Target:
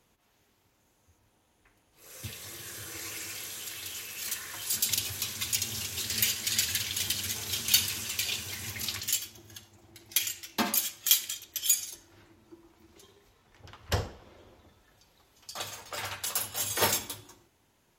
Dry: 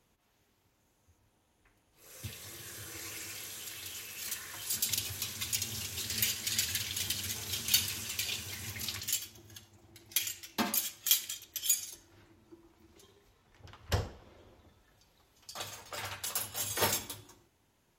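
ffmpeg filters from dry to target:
-af "lowshelf=f=210:g=-3,volume=4dB"

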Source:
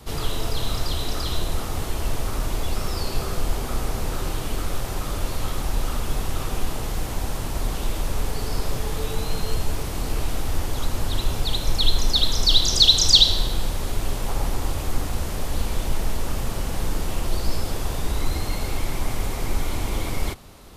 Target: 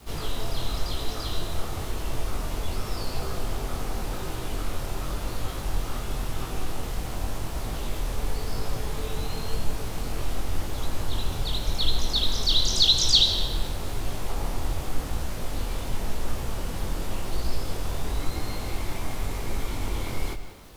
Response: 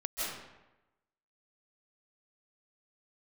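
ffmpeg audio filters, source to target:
-filter_complex "[0:a]acrusher=bits=7:mix=0:aa=0.000001,flanger=delay=18:depth=6:speed=0.92,asplit=2[a][b];[1:a]atrim=start_sample=2205,asetrate=48510,aresample=44100,lowpass=6.5k[c];[b][c]afir=irnorm=-1:irlink=0,volume=-12.5dB[d];[a][d]amix=inputs=2:normalize=0,volume=-2.5dB"

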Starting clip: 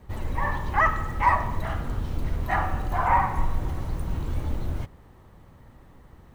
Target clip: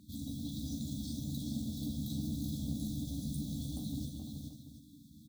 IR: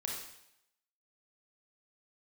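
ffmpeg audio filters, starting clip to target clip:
-filter_complex "[0:a]highpass=230,afftfilt=real='re*(1-between(b*sr/4096,310,3300))':imag='im*(1-between(b*sr/4096,310,3300))':win_size=4096:overlap=0.75,asoftclip=type=tanh:threshold=-35dB,atempo=1.2,asplit=2[a][b];[b]adelay=14,volume=-6dB[c];[a][c]amix=inputs=2:normalize=0,aecho=1:1:43|47|426|501|560|735:0.376|0.178|0.596|0.299|0.126|0.224,volume=2.5dB"

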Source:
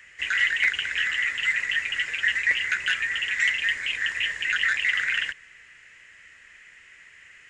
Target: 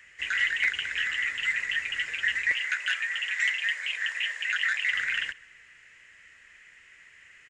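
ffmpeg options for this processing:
-filter_complex "[0:a]asettb=1/sr,asplit=3[a][b][c];[a]atrim=end=2.524[d];[b]atrim=start=2.52:end=4.93,asetpts=PTS-STARTPTS,afade=t=in:d=0.004:c=qsin,afade=t=out:st=2.406:d=0.004:c=qsin,highpass=f=500:w=0.5412,highpass=f=500:w=1.3066[e];[c]atrim=start=4.926[f];[d][e]acrossfade=d=0.004:c1=hsin:c2=qsin[g];[g][f]acrossfade=d=0.004:c1=qsin:c2=hsin,asplit=2[h][i];[i]adelay=133,lowpass=f=2k:p=1,volume=-22.5dB,asplit=2[j][k];[k]adelay=133,lowpass=f=2k:p=1,volume=0.4,asplit=2[l][m];[m]adelay=133,lowpass=f=2k:p=1,volume=0.4[n];[h][j][l][n]amix=inputs=4:normalize=0,volume=-3.5dB"

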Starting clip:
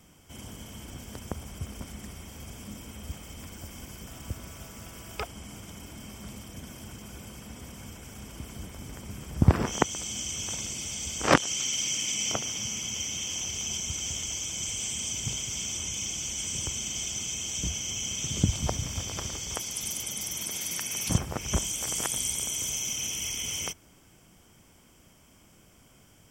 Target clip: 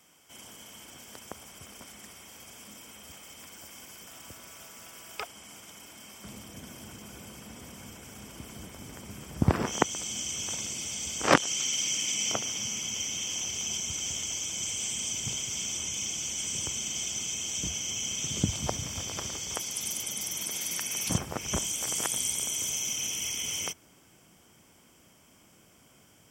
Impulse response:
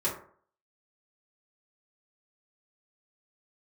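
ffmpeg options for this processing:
-af "asetnsamples=n=441:p=0,asendcmd='6.24 highpass f 160',highpass=f=750:p=1"

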